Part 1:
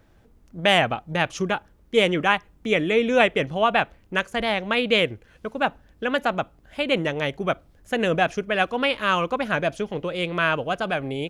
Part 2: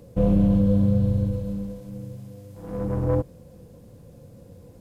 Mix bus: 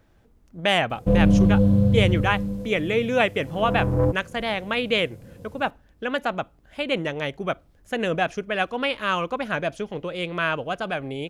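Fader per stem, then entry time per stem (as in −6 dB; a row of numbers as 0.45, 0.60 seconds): −2.5, +2.0 decibels; 0.00, 0.90 seconds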